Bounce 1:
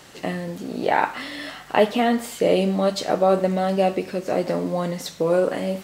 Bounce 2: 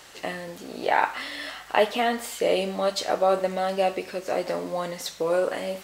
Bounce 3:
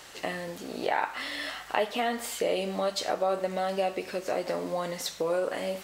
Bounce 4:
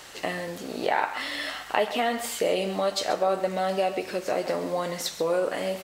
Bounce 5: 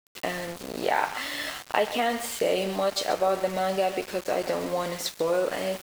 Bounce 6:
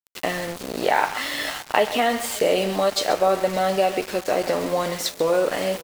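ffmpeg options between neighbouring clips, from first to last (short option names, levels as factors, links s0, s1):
-af "equalizer=f=170:t=o:w=2.3:g=-12"
-af "acompressor=threshold=0.0398:ratio=2"
-af "aecho=1:1:133:0.2,volume=1.41"
-af "aeval=exprs='val(0)*gte(abs(val(0)),0.0188)':c=same"
-af "aecho=1:1:565:0.0794,volume=1.78"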